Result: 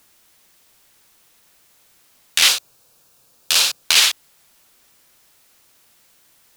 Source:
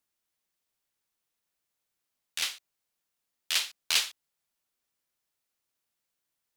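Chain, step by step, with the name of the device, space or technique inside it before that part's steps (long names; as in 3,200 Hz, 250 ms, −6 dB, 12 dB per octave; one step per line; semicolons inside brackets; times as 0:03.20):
loud club master (downward compressor, threshold −28 dBFS, peak gain reduction 8 dB; hard clipping −17 dBFS, distortion −32 dB; boost into a limiter +28.5 dB)
0:02.48–0:03.83: thirty-one-band graphic EQ 125 Hz +10 dB, 500 Hz +6 dB, 2,000 Hz −11 dB, 3,150 Hz −4 dB
level −1 dB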